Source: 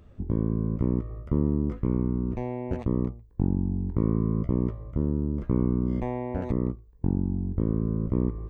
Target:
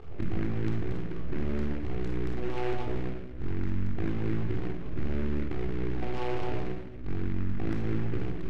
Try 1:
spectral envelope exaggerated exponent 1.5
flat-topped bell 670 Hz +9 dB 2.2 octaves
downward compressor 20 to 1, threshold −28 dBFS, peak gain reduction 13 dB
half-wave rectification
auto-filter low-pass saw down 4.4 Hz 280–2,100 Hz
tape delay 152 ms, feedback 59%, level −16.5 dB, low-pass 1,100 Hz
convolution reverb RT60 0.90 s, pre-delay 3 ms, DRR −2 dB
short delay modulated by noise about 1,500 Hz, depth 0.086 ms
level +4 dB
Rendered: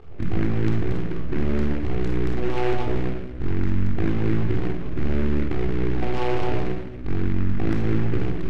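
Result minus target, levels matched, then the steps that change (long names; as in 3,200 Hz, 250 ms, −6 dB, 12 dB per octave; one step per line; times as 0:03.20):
downward compressor: peak gain reduction −8 dB
change: downward compressor 20 to 1, threshold −36.5 dBFS, peak gain reduction 21.5 dB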